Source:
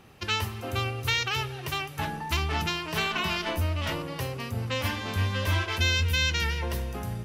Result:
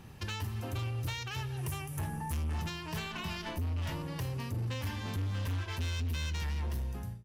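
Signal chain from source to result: ending faded out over 0.66 s; 1.57–2.59 fifteen-band EQ 100 Hz +5 dB, 1600 Hz -3 dB, 4000 Hz -10 dB, 10000 Hz +11 dB; compressor 2.5:1, threshold -38 dBFS, peak gain reduction 11.5 dB; tone controls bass +11 dB, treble +5 dB; small resonant body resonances 930/1700 Hz, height 8 dB, ringing for 35 ms; hard clip -27 dBFS, distortion -12 dB; gain -4 dB

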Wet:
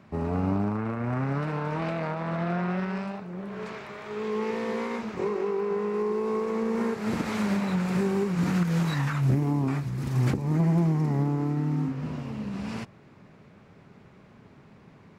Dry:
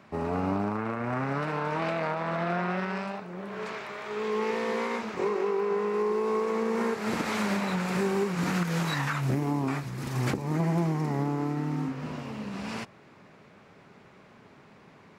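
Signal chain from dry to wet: low shelf 240 Hz +12 dB; gain -3.5 dB

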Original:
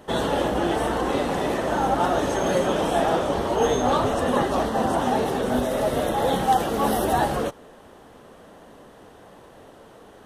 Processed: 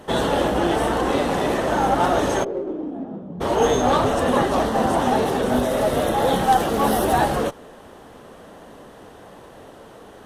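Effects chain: 2.43–3.4 band-pass 440 Hz -> 170 Hz, Q 5.3; in parallel at -4 dB: one-sided clip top -32 dBFS

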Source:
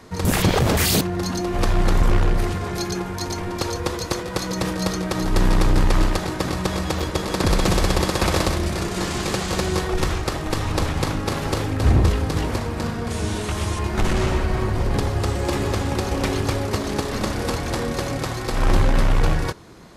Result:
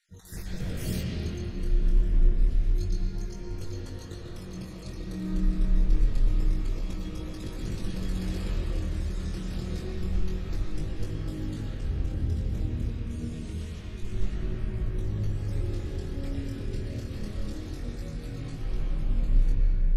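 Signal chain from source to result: random spectral dropouts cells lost 38%; passive tone stack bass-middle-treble 10-0-1; compressor 1.5:1, threshold -30 dBFS, peak gain reduction 4.5 dB; bell 73 Hz -6.5 dB 2.7 oct; reverb RT60 3.6 s, pre-delay 80 ms, DRR -6.5 dB; chorus 0.27 Hz, delay 19 ms, depth 7.1 ms; gain +5.5 dB

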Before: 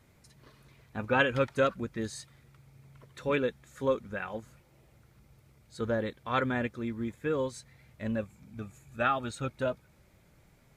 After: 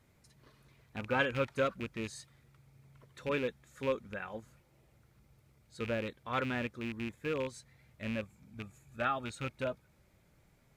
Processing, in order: rattling part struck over -34 dBFS, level -26 dBFS; gain -5 dB

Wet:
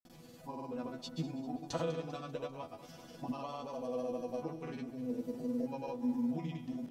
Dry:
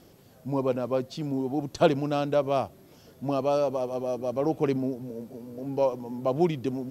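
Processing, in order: bell 460 Hz -3.5 dB 0.77 oct; compressor 6:1, threshold -37 dBFS, peak gain reduction 19 dB; resonator bank E3 fifth, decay 0.25 s; grains, pitch spread up and down by 0 st; split-band echo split 450 Hz, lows 0.102 s, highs 0.197 s, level -14.5 dB; gain +16 dB

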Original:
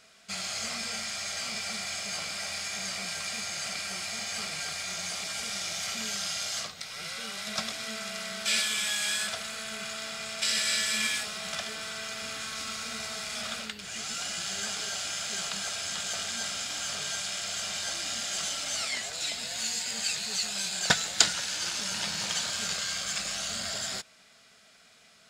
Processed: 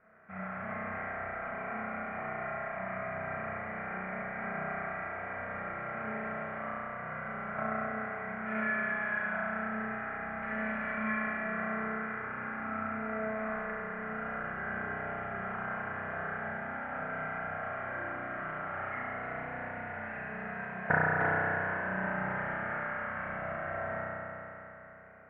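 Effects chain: steep low-pass 1900 Hz 48 dB/oct; spring tank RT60 3.3 s, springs 32 ms, chirp 40 ms, DRR -8 dB; gain -3.5 dB

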